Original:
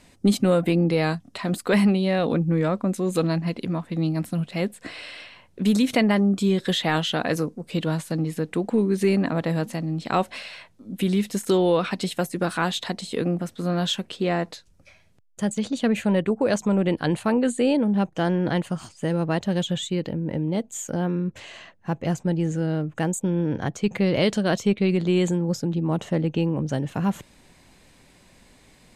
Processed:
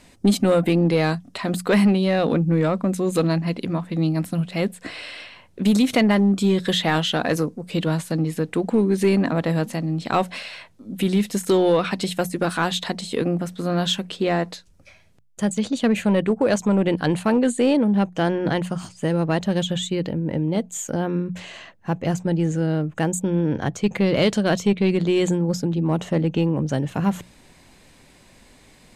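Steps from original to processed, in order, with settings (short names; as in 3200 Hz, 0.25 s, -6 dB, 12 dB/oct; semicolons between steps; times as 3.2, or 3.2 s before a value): notches 60/120/180 Hz; in parallel at -3.5 dB: overloaded stage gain 17 dB; on the sum: gain -1.5 dB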